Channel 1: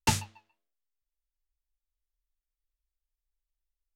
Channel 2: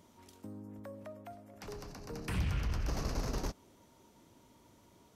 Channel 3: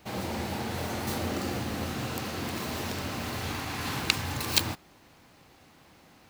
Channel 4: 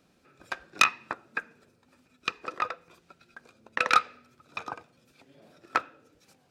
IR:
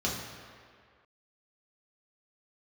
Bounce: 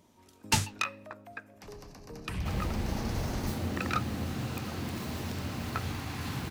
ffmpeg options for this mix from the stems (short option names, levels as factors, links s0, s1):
-filter_complex "[0:a]acrossover=split=1700[s0][s1];[s0]aeval=exprs='val(0)*(1-0.5/2+0.5/2*cos(2*PI*6.6*n/s))':c=same[s2];[s1]aeval=exprs='val(0)*(1-0.5/2-0.5/2*cos(2*PI*6.6*n/s))':c=same[s3];[s2][s3]amix=inputs=2:normalize=0,adelay=450,volume=1.33[s4];[1:a]bandreject=f=1400:w=12,volume=0.841[s5];[2:a]acrossover=split=250[s6][s7];[s7]acompressor=threshold=0.00447:ratio=2[s8];[s6][s8]amix=inputs=2:normalize=0,adelay=2400,volume=1.19[s9];[3:a]volume=0.282[s10];[s4][s5][s9][s10]amix=inputs=4:normalize=0"